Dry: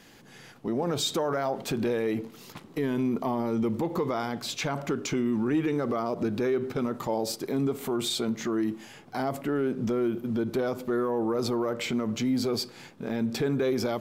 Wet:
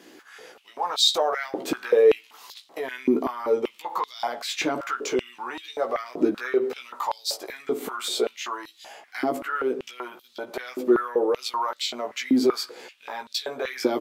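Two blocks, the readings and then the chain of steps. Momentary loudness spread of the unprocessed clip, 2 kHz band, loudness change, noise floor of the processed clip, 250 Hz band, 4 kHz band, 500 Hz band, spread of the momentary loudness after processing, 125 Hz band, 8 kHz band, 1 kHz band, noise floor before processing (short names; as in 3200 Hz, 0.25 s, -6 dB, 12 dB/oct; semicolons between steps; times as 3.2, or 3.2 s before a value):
5 LU, +5.5 dB, +3.0 dB, -57 dBFS, -1.5 dB, +7.0 dB, +4.0 dB, 17 LU, -17.0 dB, +3.0 dB, +5.5 dB, -52 dBFS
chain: doubler 16 ms -4 dB; stepped high-pass 5.2 Hz 320–3900 Hz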